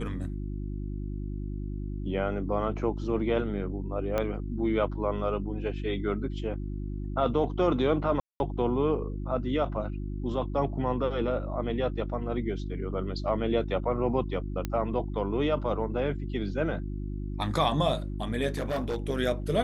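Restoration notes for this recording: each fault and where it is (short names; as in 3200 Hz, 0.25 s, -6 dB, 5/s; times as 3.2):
hum 50 Hz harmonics 7 -34 dBFS
4.18 pop -15 dBFS
8.2–8.4 gap 0.201 s
14.65 pop -17 dBFS
18.5–19.1 clipped -26 dBFS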